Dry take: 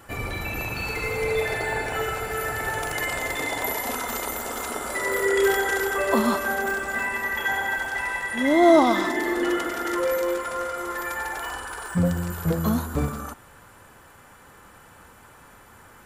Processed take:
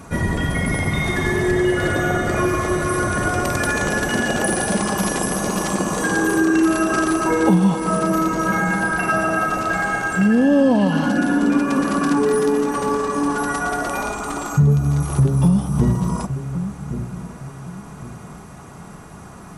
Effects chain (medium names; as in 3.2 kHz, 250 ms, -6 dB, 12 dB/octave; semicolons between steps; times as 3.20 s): peaking EQ 200 Hz +13 dB 1.4 oct; compression 3:1, threshold -22 dBFS, peak gain reduction 11.5 dB; tape speed -18%; on a send: feedback echo behind a low-pass 1113 ms, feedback 33%, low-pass 530 Hz, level -10 dB; on the sum: trim +6.5 dB